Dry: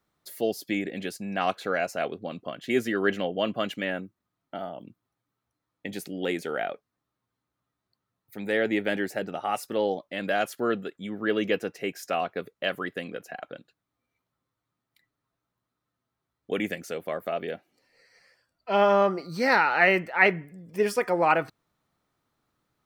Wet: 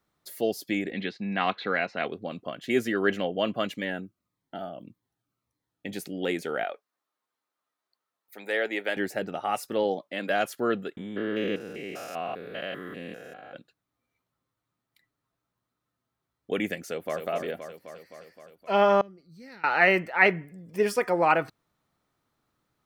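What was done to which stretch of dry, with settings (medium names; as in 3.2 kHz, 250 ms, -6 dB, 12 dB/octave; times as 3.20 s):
0.92–2.07 s: cabinet simulation 110–4000 Hz, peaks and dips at 210 Hz +4 dB, 610 Hz -6 dB, 1 kHz +3 dB, 2 kHz +7 dB, 3.9 kHz +8 dB
3.67–5.86 s: Shepard-style phaser falling 1.7 Hz
6.64–8.97 s: high-pass 490 Hz
9.83–10.28 s: high-pass 89 Hz -> 220 Hz 24 dB/octave
10.97–13.55 s: spectrogram pixelated in time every 200 ms
16.80–17.25 s: echo throw 260 ms, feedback 70%, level -6.5 dB
19.01–19.64 s: amplifier tone stack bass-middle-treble 10-0-1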